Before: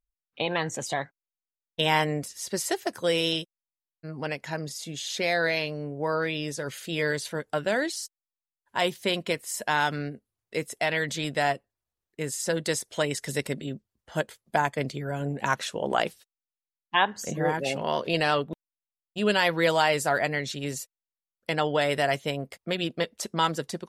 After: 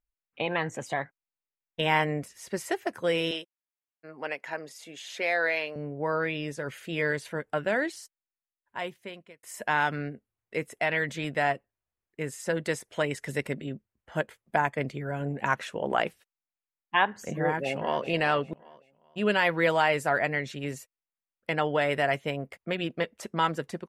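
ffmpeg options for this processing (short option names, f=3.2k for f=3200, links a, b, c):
-filter_complex "[0:a]asettb=1/sr,asplit=3[a][b][c];[a]atrim=end=3.314[d];[b]atrim=start=3.31:end=5.76,asetpts=PTS-STARTPTS,afade=t=in:d=0.004:c=qsin,afade=t=out:st=2.446:d=0.004:c=qsin,highpass=390[e];[c]atrim=start=5.756[f];[d][e]acrossfade=d=0.004:c1=hsin:c2=qsin[g];[g][f]acrossfade=d=0.004:c1=qsin:c2=hsin,asplit=2[h][i];[i]afade=t=in:st=17.42:d=0.01,afade=t=out:st=18.04:d=0.01,aecho=0:1:390|780|1170:0.211349|0.0634047|0.0190214[j];[h][j]amix=inputs=2:normalize=0,asplit=2[k][l];[k]atrim=end=9.43,asetpts=PTS-STARTPTS,afade=t=out:st=7.99:d=1.44[m];[l]atrim=start=9.43,asetpts=PTS-STARTPTS,afade=t=in:d=0.004:c=hsin[n];[m][n]concat=n=2:v=0:a=1,highshelf=f=3.1k:t=q:w=1.5:g=-7.5,volume=-1.5dB"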